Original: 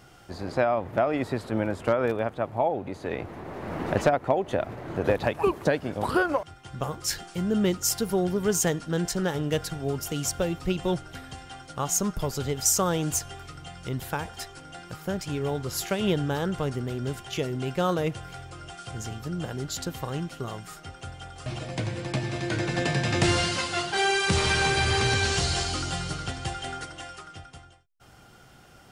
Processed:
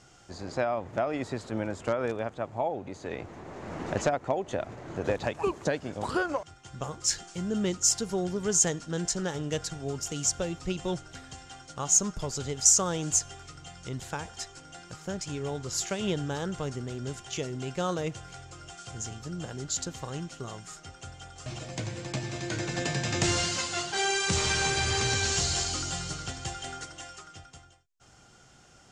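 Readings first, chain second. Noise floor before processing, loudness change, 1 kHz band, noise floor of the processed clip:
-52 dBFS, -2.5 dB, -5.0 dB, -56 dBFS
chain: synth low-pass 7000 Hz, resonance Q 3.3; gain -5 dB

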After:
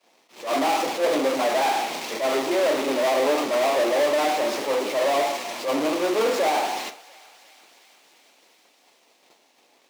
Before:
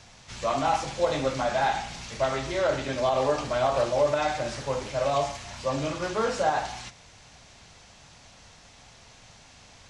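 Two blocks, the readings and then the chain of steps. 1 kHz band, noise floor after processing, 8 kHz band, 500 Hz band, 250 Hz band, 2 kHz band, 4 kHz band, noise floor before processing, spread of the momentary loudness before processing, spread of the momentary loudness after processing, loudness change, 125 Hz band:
+3.0 dB, -61 dBFS, +5.5 dB, +4.5 dB, +6.5 dB, +5.0 dB, +6.0 dB, -53 dBFS, 8 LU, 6 LU, +4.5 dB, under -10 dB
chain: half-waves squared off; expander -35 dBFS; bell 1500 Hz -6.5 dB 0.54 oct; in parallel at -7 dB: sample-and-hold 26×; on the sum: overdrive pedal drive 23 dB, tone 5300 Hz, clips at -8.5 dBFS; ladder high-pass 250 Hz, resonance 40%; thinning echo 0.347 s, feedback 78%, high-pass 1000 Hz, level -20.5 dB; attack slew limiter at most 160 dB/s

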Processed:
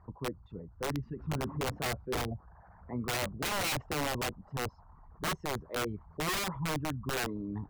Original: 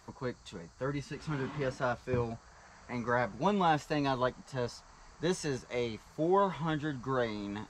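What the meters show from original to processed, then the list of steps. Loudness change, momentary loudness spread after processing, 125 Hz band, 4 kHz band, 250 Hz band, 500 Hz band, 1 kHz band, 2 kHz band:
-1.5 dB, 8 LU, 0.0 dB, +6.0 dB, -3.0 dB, -5.0 dB, -4.0 dB, +1.5 dB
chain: formant sharpening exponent 2; LPF 1100 Hz 12 dB/oct; wrapped overs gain 27.5 dB; bell 86 Hz +7 dB 1.1 oct

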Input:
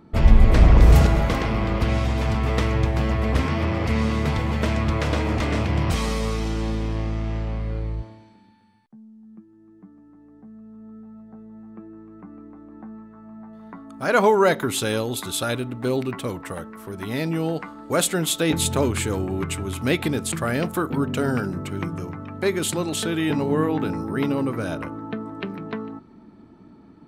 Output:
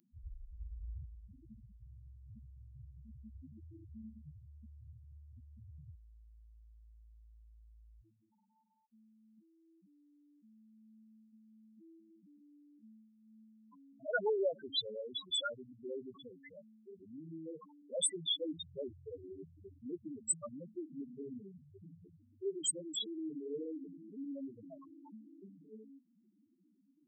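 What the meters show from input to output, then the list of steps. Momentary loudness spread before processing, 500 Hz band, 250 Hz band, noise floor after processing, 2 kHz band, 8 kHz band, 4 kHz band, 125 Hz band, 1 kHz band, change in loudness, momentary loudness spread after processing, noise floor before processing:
23 LU, -18.0 dB, -23.0 dB, -73 dBFS, -21.0 dB, -11.0 dB, -10.0 dB, -32.0 dB, -25.5 dB, -17.0 dB, 22 LU, -51 dBFS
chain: loudest bins only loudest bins 2; differentiator; gain +11 dB

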